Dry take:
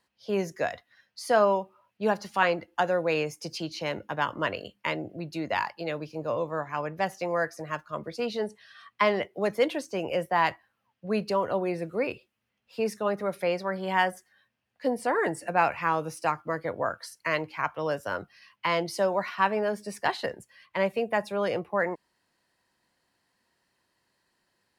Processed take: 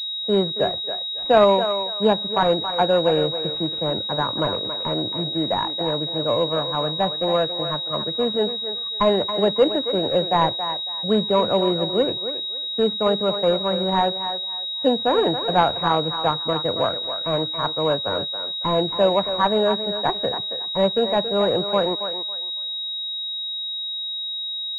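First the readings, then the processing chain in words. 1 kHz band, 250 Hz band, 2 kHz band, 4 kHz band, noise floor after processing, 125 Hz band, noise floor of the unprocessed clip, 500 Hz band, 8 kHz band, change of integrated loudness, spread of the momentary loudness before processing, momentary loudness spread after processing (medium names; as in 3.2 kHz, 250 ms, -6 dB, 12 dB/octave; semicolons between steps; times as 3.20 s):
+5.5 dB, +8.5 dB, -2.5 dB, +20.5 dB, -29 dBFS, +9.0 dB, -78 dBFS, +8.0 dB, no reading, +7.5 dB, 9 LU, 6 LU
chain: median filter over 25 samples; thinning echo 276 ms, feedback 26%, high-pass 440 Hz, level -8 dB; class-D stage that switches slowly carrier 3.8 kHz; trim +8.5 dB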